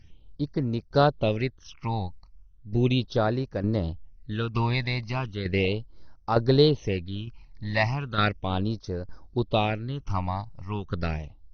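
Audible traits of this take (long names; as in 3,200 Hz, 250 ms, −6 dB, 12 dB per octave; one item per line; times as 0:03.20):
phaser sweep stages 8, 0.36 Hz, lowest notch 400–3,100 Hz
tremolo saw down 1.1 Hz, depth 60%
AC-3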